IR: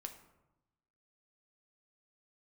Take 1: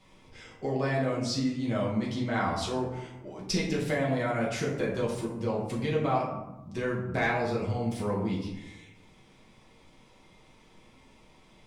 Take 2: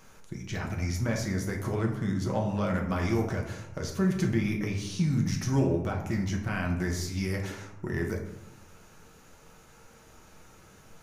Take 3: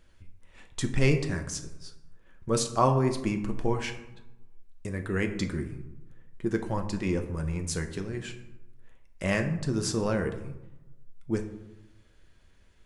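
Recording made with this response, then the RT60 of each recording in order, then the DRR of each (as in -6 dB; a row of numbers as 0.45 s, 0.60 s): 3; 0.95 s, 0.95 s, 0.95 s; -5.0 dB, 0.0 dB, 5.0 dB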